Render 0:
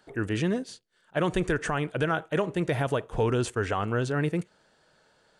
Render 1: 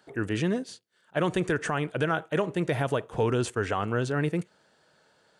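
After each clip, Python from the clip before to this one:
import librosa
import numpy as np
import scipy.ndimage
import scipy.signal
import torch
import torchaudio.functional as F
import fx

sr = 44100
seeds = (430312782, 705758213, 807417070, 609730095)

y = scipy.signal.sosfilt(scipy.signal.butter(2, 84.0, 'highpass', fs=sr, output='sos'), x)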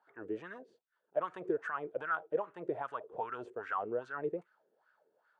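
y = fx.wah_lfo(x, sr, hz=2.5, low_hz=380.0, high_hz=1500.0, q=5.0)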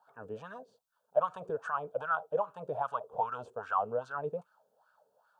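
y = fx.fixed_phaser(x, sr, hz=830.0, stages=4)
y = F.gain(torch.from_numpy(y), 7.5).numpy()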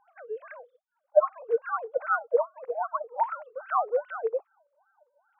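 y = fx.sine_speech(x, sr)
y = F.gain(torch.from_numpy(y), 6.0).numpy()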